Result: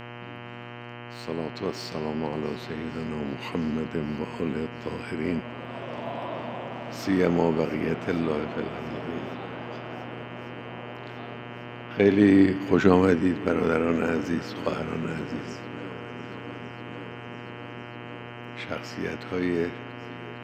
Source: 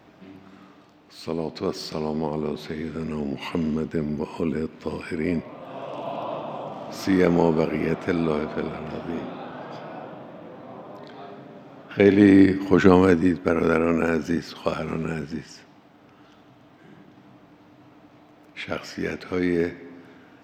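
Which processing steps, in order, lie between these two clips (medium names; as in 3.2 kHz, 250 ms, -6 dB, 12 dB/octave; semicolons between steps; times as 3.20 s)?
shuffle delay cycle 1146 ms, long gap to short 1.5:1, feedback 66%, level -18.5 dB; mains buzz 120 Hz, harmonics 26, -37 dBFS -3 dB/octave; trim -3.5 dB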